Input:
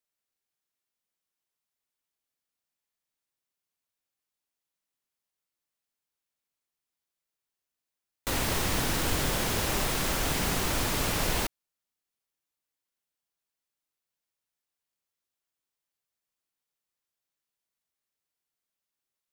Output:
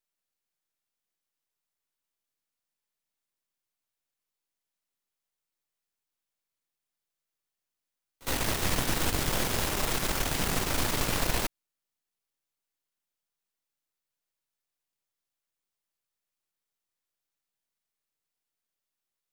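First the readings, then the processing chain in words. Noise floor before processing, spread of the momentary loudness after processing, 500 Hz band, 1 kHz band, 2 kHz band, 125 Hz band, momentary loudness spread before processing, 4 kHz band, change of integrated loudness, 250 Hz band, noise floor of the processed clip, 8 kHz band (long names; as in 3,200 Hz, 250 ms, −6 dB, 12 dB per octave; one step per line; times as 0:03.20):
below −85 dBFS, 3 LU, −1.0 dB, −1.0 dB, −1.0 dB, −1.0 dB, 3 LU, −1.0 dB, −1.0 dB, −1.0 dB, below −85 dBFS, −0.5 dB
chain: gain on one half-wave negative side −12 dB
echo ahead of the sound 60 ms −21.5 dB
level +2.5 dB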